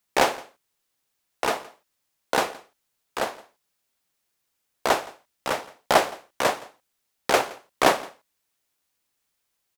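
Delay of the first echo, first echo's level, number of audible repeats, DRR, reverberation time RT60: 169 ms, -22.0 dB, 1, no reverb, no reverb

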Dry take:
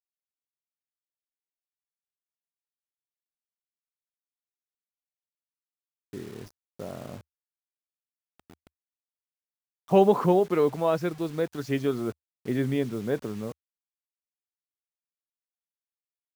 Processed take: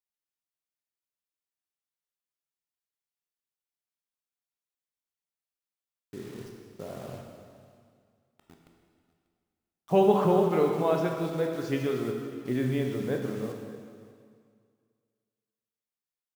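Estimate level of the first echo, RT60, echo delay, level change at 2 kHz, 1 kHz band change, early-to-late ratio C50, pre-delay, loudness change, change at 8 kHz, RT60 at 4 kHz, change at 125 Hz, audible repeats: -21.5 dB, 2.1 s, 591 ms, -0.5 dB, -1.0 dB, 3.0 dB, 8 ms, -1.5 dB, no reading, 2.0 s, 0.0 dB, 1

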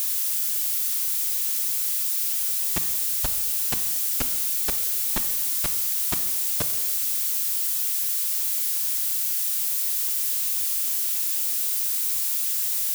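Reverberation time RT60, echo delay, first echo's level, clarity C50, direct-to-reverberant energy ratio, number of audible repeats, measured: 1.3 s, no echo, no echo, 11.0 dB, 8.5 dB, no echo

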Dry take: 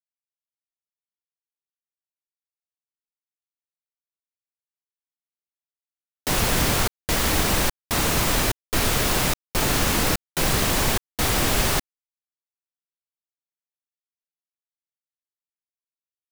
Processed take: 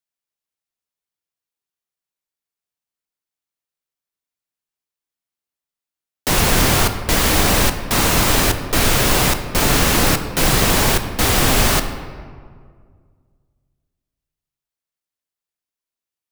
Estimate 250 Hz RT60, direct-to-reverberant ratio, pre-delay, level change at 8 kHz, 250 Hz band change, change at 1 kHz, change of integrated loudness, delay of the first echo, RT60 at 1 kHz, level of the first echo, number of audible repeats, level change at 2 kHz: 2.2 s, 7.5 dB, 12 ms, +6.0 dB, +6.5 dB, +6.5 dB, +6.0 dB, no echo, 1.8 s, no echo, no echo, +6.0 dB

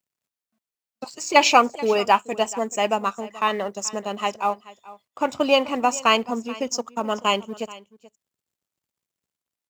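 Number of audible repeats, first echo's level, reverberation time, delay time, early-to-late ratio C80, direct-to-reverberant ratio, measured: 1, -19.5 dB, no reverb, 431 ms, no reverb, no reverb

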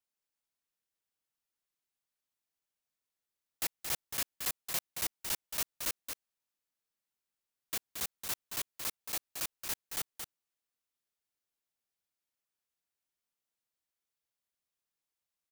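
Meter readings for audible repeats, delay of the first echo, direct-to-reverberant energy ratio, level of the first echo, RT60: 1, 225 ms, no reverb, -7.0 dB, no reverb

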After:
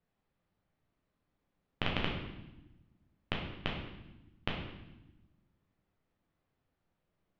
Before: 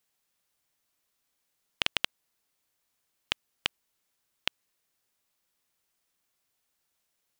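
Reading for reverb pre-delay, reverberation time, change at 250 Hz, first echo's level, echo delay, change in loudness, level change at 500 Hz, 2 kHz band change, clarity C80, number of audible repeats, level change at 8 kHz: 10 ms, 0.95 s, +11.5 dB, no echo, no echo, -5.5 dB, +5.5 dB, -4.5 dB, 6.5 dB, no echo, under -20 dB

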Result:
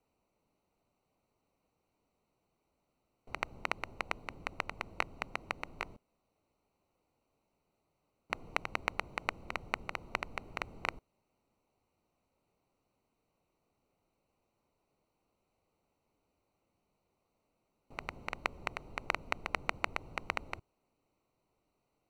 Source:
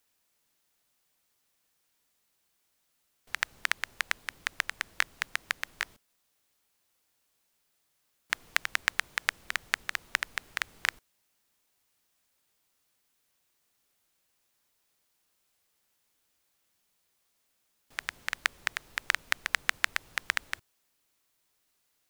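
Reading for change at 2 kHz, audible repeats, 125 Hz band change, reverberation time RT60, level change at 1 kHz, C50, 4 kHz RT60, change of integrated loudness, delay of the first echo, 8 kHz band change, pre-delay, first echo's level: -9.5 dB, no echo, no reading, no reverb, +0.5 dB, no reverb, no reverb, -7.5 dB, no echo, -15.5 dB, no reverb, no echo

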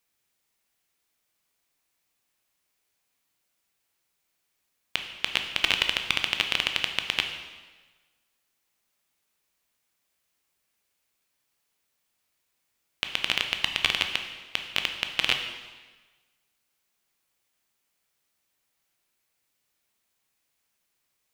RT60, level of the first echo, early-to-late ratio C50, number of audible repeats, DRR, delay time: 1.3 s, no echo, 7.0 dB, no echo, 5.0 dB, no echo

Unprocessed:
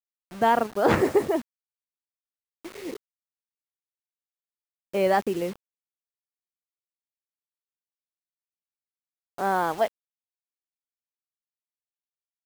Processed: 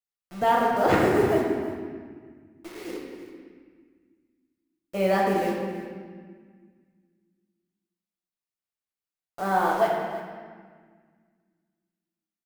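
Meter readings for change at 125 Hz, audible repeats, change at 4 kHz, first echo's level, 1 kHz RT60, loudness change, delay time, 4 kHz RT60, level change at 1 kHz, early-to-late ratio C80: +3.0 dB, 1, +0.5 dB, -13.5 dB, 1.7 s, 0.0 dB, 326 ms, 1.3 s, +1.5 dB, 2.0 dB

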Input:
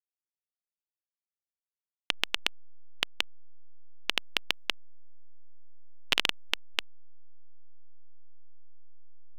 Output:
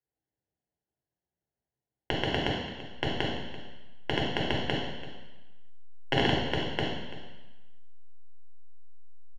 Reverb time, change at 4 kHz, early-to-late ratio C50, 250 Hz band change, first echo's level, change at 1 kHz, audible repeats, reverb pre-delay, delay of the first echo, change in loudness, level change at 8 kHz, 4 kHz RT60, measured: 1.2 s, -2.5 dB, 1.5 dB, +16.5 dB, -16.0 dB, +8.0 dB, 1, 4 ms, 337 ms, +0.5 dB, -9.5 dB, 1.3 s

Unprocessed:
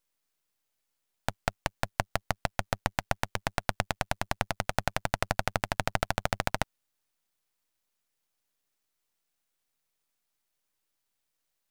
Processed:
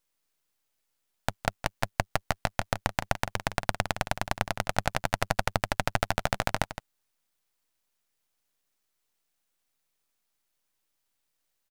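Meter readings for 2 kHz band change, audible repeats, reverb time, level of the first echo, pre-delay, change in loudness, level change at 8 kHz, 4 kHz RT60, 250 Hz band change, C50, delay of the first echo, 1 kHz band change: +2.0 dB, 1, no reverb, -11.5 dB, no reverb, +2.0 dB, +2.0 dB, no reverb, +2.0 dB, no reverb, 164 ms, +2.0 dB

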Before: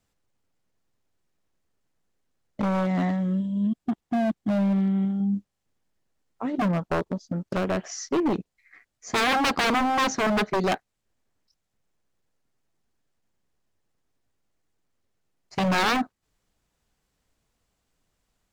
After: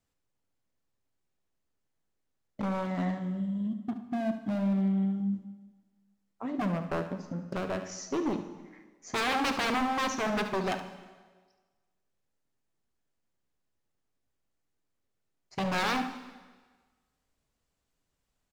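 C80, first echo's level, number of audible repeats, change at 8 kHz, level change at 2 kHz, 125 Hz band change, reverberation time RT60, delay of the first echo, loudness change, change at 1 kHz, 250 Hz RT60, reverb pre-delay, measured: 12.0 dB, -11.5 dB, 1, -6.0 dB, -6.0 dB, -6.0 dB, 1.4 s, 72 ms, -6.0 dB, -6.5 dB, 1.4 s, 4 ms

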